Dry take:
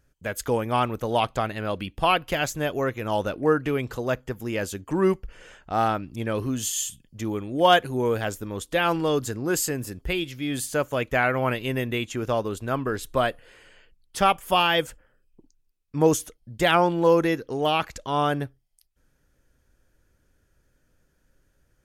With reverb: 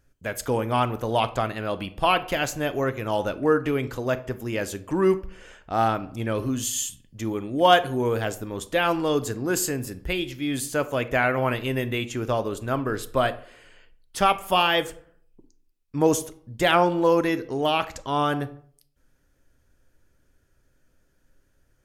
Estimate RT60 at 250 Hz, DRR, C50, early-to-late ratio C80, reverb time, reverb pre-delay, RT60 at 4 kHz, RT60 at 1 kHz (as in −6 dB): 0.60 s, 12.0 dB, 16.5 dB, 20.0 dB, 0.55 s, 3 ms, 0.35 s, 0.55 s